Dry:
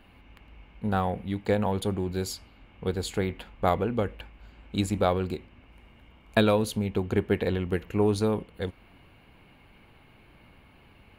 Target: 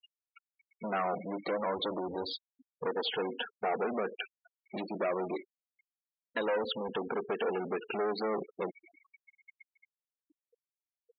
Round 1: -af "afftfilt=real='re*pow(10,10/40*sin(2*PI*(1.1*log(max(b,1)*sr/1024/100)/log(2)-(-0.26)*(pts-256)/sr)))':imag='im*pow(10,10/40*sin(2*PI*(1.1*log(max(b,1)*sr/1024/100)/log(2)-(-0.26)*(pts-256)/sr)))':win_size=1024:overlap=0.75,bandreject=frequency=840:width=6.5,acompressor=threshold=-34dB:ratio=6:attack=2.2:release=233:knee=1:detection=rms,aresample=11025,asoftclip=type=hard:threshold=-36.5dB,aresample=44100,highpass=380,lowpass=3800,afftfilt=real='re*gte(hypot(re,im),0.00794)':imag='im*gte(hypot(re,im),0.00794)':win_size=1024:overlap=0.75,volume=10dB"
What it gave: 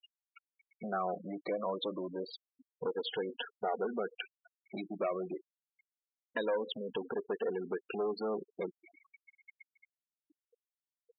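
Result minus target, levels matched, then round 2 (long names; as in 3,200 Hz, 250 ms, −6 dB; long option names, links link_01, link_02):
downward compressor: peak gain reduction +7.5 dB
-af "afftfilt=real='re*pow(10,10/40*sin(2*PI*(1.1*log(max(b,1)*sr/1024/100)/log(2)-(-0.26)*(pts-256)/sr)))':imag='im*pow(10,10/40*sin(2*PI*(1.1*log(max(b,1)*sr/1024/100)/log(2)-(-0.26)*(pts-256)/sr)))':win_size=1024:overlap=0.75,bandreject=frequency=840:width=6.5,acompressor=threshold=-25dB:ratio=6:attack=2.2:release=233:knee=1:detection=rms,aresample=11025,asoftclip=type=hard:threshold=-36.5dB,aresample=44100,highpass=380,lowpass=3800,afftfilt=real='re*gte(hypot(re,im),0.00794)':imag='im*gte(hypot(re,im),0.00794)':win_size=1024:overlap=0.75,volume=10dB"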